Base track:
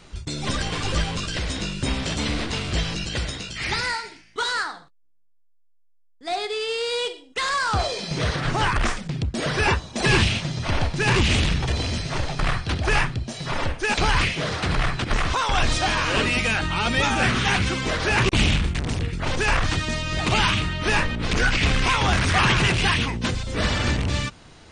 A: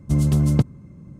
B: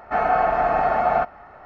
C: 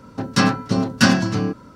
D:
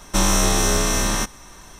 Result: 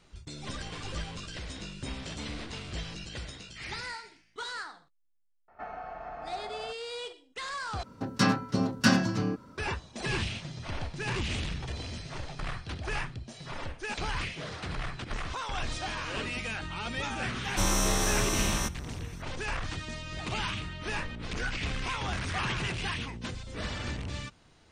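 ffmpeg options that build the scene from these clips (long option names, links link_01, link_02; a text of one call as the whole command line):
ffmpeg -i bed.wav -i cue0.wav -i cue1.wav -i cue2.wav -i cue3.wav -filter_complex "[0:a]volume=-13dB[link_01];[2:a]acrossover=split=140|3100[link_02][link_03][link_04];[link_03]acompressor=threshold=-25dB:ratio=6:attack=55:release=251:knee=2.83:detection=peak[link_05];[link_02][link_05][link_04]amix=inputs=3:normalize=0[link_06];[link_01]asplit=2[link_07][link_08];[link_07]atrim=end=7.834[link_09];[3:a]atrim=end=1.75,asetpts=PTS-STARTPTS,volume=-8dB[link_10];[link_08]atrim=start=9.576[link_11];[link_06]atrim=end=1.65,asetpts=PTS-STARTPTS,volume=-16dB,afade=type=in:duration=0.004:curve=hsin,afade=type=out:start_time=1.646:duration=0.004:curve=hsin,adelay=5480[link_12];[4:a]atrim=end=1.79,asetpts=PTS-STARTPTS,volume=-9dB,afade=type=in:duration=0.004:curve=hsin,afade=type=out:start_time=1.786:duration=0.004:curve=hsin,adelay=17430[link_13];[link_09][link_10]acrossfade=duration=0.004:curve1=hsin:curve2=hsin[link_14];[link_14][link_11]acrossfade=duration=0.004:curve1=hsin:curve2=hsin[link_15];[link_15][link_12][link_13]amix=inputs=3:normalize=0" out.wav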